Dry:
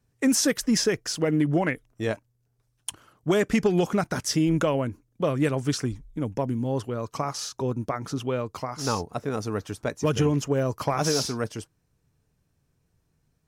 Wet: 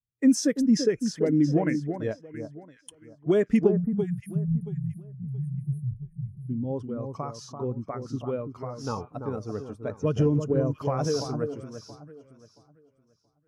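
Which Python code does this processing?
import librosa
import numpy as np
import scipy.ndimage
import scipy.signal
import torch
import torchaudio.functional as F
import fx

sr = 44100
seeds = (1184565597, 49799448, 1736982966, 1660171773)

p1 = fx.spec_erase(x, sr, start_s=3.72, length_s=2.77, low_hz=210.0, high_hz=8700.0)
p2 = p1 + fx.echo_alternate(p1, sr, ms=338, hz=1400.0, feedback_pct=61, wet_db=-5, dry=0)
p3 = fx.spectral_expand(p2, sr, expansion=1.5)
y = F.gain(torch.from_numpy(p3), 1.5).numpy()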